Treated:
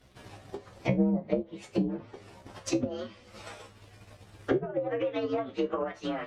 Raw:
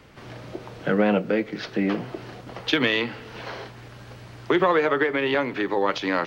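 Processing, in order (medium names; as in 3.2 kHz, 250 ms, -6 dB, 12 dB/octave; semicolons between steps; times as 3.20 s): frequency axis rescaled in octaves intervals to 123%; transient shaper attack +10 dB, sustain -4 dB; low-pass that closes with the level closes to 400 Hz, closed at -15.5 dBFS; feedback comb 67 Hz, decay 0.18 s, harmonics all, mix 80%; trim -2 dB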